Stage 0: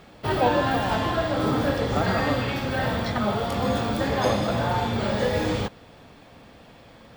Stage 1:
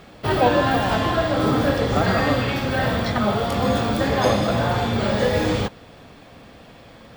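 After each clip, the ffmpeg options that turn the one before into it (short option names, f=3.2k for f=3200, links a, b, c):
-af "bandreject=f=890:w=19,volume=4dB"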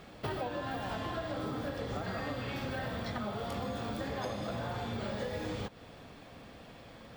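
-af "acompressor=threshold=-27dB:ratio=12,volume=-6.5dB"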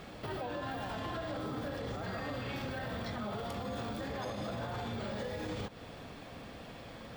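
-af "alimiter=level_in=10dB:limit=-24dB:level=0:latency=1:release=52,volume=-10dB,volume=3.5dB"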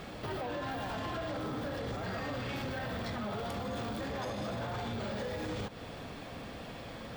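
-af "aeval=exprs='0.0316*sin(PI/2*1.41*val(0)/0.0316)':c=same,volume=-3dB"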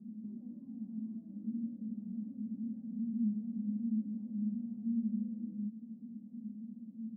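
-af "asuperpass=centerf=220:order=4:qfactor=7,volume=10.5dB"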